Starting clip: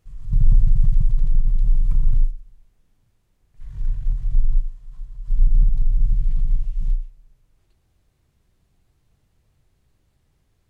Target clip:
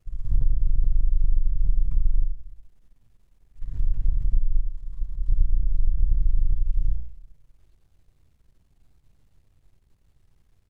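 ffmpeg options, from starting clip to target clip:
-filter_complex "[0:a]aeval=exprs='if(lt(val(0),0),0.251*val(0),val(0))':c=same,lowshelf=f=78:g=8.5,acompressor=threshold=-15dB:ratio=12,asplit=2[a][b];[b]aecho=0:1:85:0.376[c];[a][c]amix=inputs=2:normalize=0"

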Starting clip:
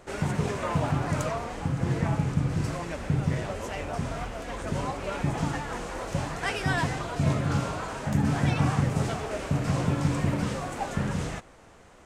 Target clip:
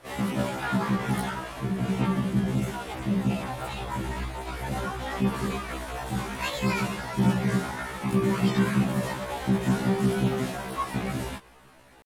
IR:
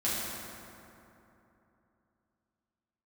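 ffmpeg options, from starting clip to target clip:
-af "asetrate=60591,aresample=44100,atempo=0.727827,afftfilt=real='re*1.73*eq(mod(b,3),0)':imag='im*1.73*eq(mod(b,3),0)':win_size=2048:overlap=0.75,volume=2dB"

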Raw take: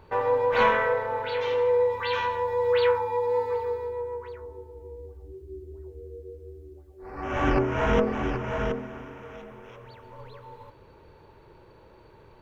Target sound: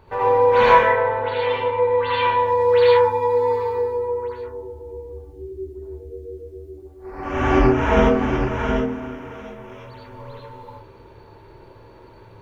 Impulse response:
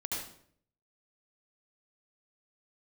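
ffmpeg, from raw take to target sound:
-filter_complex "[0:a]asettb=1/sr,asplit=3[a][b][c];[a]atrim=end=0.824[d];[b]atrim=start=0.82:end=2.39,asetpts=PTS-STARTPTS,afade=t=in:d=0.004:c=qsin,afade=t=out:st=1.566:d=0.004:c=qsin,lowpass=f=3.8k:w=0.5412,lowpass=f=3.8k:w=1.3066[e];[c]atrim=start=2.386[f];[d][e]acrossfade=d=0.004:c1=hsin:c2=qsin[g];[g][f]acrossfade=d=0.004:c1=qsin:c2=hsin[h];[1:a]atrim=start_sample=2205,afade=t=out:st=0.19:d=0.01,atrim=end_sample=8820[i];[h][i]afir=irnorm=-1:irlink=0,volume=4dB"

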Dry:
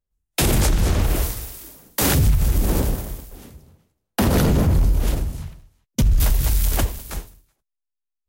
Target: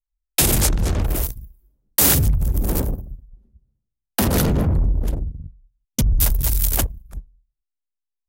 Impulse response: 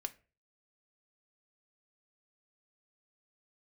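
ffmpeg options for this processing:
-af "anlmdn=398,aemphasis=mode=production:type=cd,volume=-1dB"

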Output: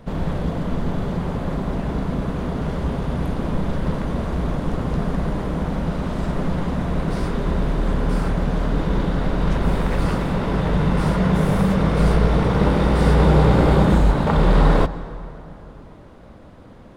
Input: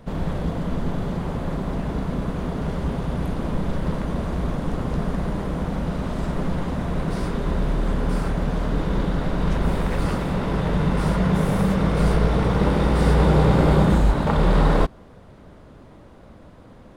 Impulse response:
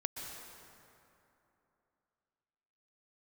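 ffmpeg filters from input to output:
-filter_complex "[0:a]asplit=2[a][b];[1:a]atrim=start_sample=2205,lowpass=7.3k[c];[b][c]afir=irnorm=-1:irlink=0,volume=-10.5dB[d];[a][d]amix=inputs=2:normalize=0"

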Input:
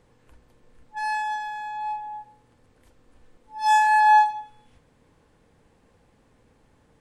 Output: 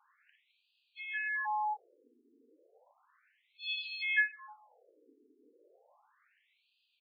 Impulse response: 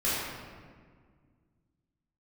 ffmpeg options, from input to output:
-filter_complex "[0:a]aecho=1:1:38|57:0.178|0.473,asplit=2[a][b];[b]asetrate=55563,aresample=44100,atempo=0.793701,volume=-10dB[c];[a][c]amix=inputs=2:normalize=0,afftfilt=real='re*between(b*sr/1024,320*pow(3500/320,0.5+0.5*sin(2*PI*0.33*pts/sr))/1.41,320*pow(3500/320,0.5+0.5*sin(2*PI*0.33*pts/sr))*1.41)':imag='im*between(b*sr/1024,320*pow(3500/320,0.5+0.5*sin(2*PI*0.33*pts/sr))/1.41,320*pow(3500/320,0.5+0.5*sin(2*PI*0.33*pts/sr))*1.41)':win_size=1024:overlap=0.75"

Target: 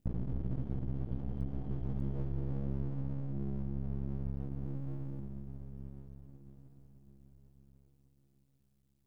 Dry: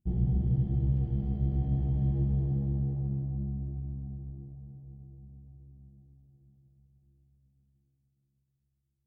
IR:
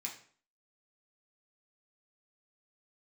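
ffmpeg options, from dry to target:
-filter_complex "[0:a]asettb=1/sr,asplit=3[a][b][c];[a]atrim=end=4.654[d];[b]atrim=start=4.65:end=5.2,asetpts=PTS-STARTPTS,afade=t=in:d=0.004:c=qsin,afade=t=out:st=0.546:d=0.004:c=qsin,aecho=1:1:6.1:0.75,atrim=end_sample=24255[e];[c]atrim=start=5.196[f];[d][e]acrossfade=d=0.004:c1=hsin:c2=qsin[g];[g][f]acrossfade=d=0.004:c1=qsin:c2=hsin,acompressor=threshold=-41dB:ratio=6,aeval=exprs='max(val(0),0)':c=same,volume=10.5dB"

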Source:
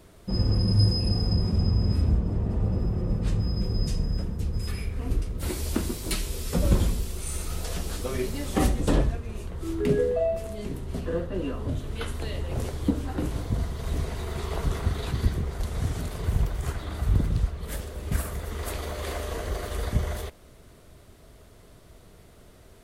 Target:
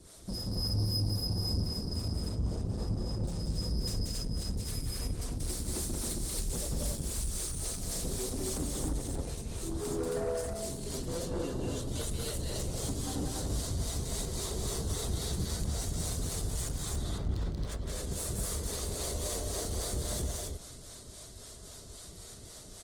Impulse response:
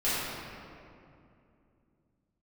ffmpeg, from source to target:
-filter_complex "[0:a]lowpass=f=9.4k:w=0.5412,lowpass=f=9.4k:w=1.3066,acrossover=split=690|2800|6800[a][b][c][d];[a]acompressor=threshold=-23dB:ratio=4[e];[b]acompressor=threshold=-51dB:ratio=4[f];[c]acompressor=threshold=-55dB:ratio=4[g];[d]acompressor=threshold=-52dB:ratio=4[h];[e][f][g][h]amix=inputs=4:normalize=0,aexciter=amount=6.9:drive=1.2:freq=3.7k,asplit=3[i][j][k];[i]afade=t=out:st=16.9:d=0.02[l];[j]adynamicsmooth=sensitivity=7.5:basefreq=1.8k,afade=t=in:st=16.9:d=0.02,afade=t=out:st=17.87:d=0.02[m];[k]afade=t=in:st=17.87:d=0.02[n];[l][m][n]amix=inputs=3:normalize=0,acrossover=split=420[o][p];[o]aeval=exprs='val(0)*(1-0.7/2+0.7/2*cos(2*PI*3.7*n/s))':c=same[q];[p]aeval=exprs='val(0)*(1-0.7/2-0.7/2*cos(2*PI*3.7*n/s))':c=same[r];[q][r]amix=inputs=2:normalize=0,aeval=exprs='(tanh(44.7*val(0)+0.15)-tanh(0.15))/44.7':c=same,aecho=1:1:183.7|215.7|271.1:0.708|0.316|0.891,asplit=2[s][t];[1:a]atrim=start_sample=2205[u];[t][u]afir=irnorm=-1:irlink=0,volume=-33.5dB[v];[s][v]amix=inputs=2:normalize=0" -ar 48000 -c:a libopus -b:a 20k

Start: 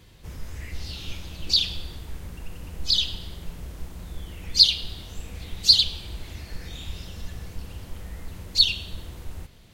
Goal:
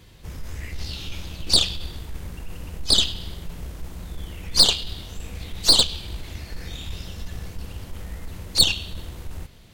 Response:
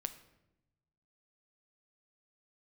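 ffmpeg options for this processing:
-af "aeval=exprs='0.841*(cos(1*acos(clip(val(0)/0.841,-1,1)))-cos(1*PI/2))+0.106*(cos(4*acos(clip(val(0)/0.841,-1,1)))-cos(4*PI/2))+0.0668*(cos(8*acos(clip(val(0)/0.841,-1,1)))-cos(8*PI/2))':c=same,alimiter=level_in=3.5dB:limit=-1dB:release=50:level=0:latency=1,volume=-1dB"

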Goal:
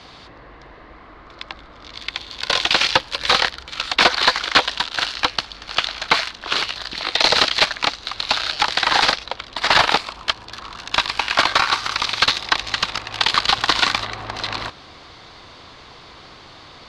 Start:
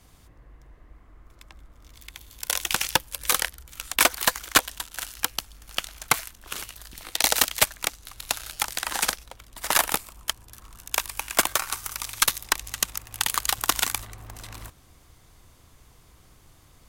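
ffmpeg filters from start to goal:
-filter_complex "[0:a]asplit=2[a][b];[b]highpass=f=720:p=1,volume=26dB,asoftclip=type=tanh:threshold=-2.5dB[c];[a][c]amix=inputs=2:normalize=0,lowpass=f=1.3k:p=1,volume=-6dB,lowpass=f=4.3k:t=q:w=3.5,volume=2dB"

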